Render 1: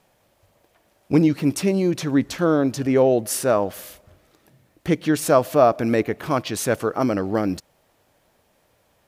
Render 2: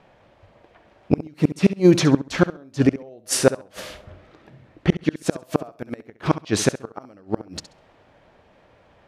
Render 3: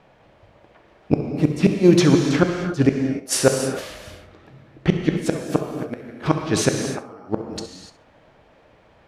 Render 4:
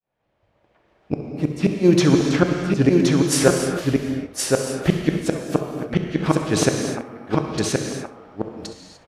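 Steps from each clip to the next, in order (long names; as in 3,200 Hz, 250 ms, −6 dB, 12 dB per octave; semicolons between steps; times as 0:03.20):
low-pass that shuts in the quiet parts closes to 2,800 Hz, open at −14.5 dBFS; gate with flip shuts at −12 dBFS, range −34 dB; flutter between parallel walls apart 11.4 metres, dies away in 0.28 s; level +8.5 dB
reverb whose tail is shaped and stops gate 320 ms flat, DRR 3.5 dB
fade in at the beginning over 2.26 s; single-tap delay 1,071 ms −3 dB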